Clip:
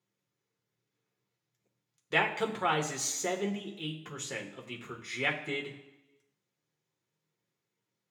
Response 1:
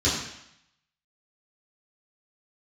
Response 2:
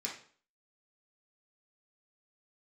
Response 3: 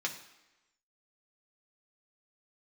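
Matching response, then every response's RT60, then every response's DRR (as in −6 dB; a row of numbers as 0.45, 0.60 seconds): 3; 0.75, 0.45, 1.0 seconds; −10.0, −4.0, 0.0 decibels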